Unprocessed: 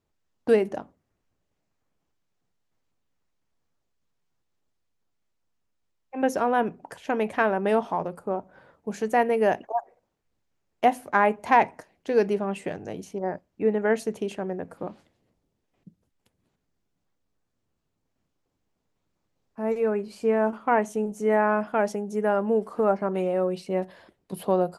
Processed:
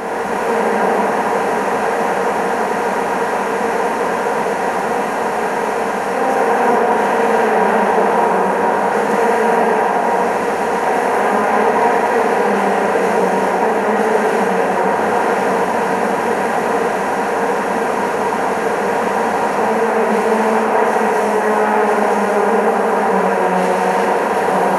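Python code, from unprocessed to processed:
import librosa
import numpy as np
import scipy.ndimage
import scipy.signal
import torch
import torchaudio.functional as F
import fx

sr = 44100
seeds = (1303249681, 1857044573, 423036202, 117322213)

p1 = fx.bin_compress(x, sr, power=0.2)
p2 = fx.over_compress(p1, sr, threshold_db=-21.0, ratio=-0.5)
p3 = p1 + (p2 * 10.0 ** (-1.0 / 20.0))
p4 = fx.rev_gated(p3, sr, seeds[0], gate_ms=460, shape='flat', drr_db=-7.5)
y = p4 * 10.0 ** (-9.5 / 20.0)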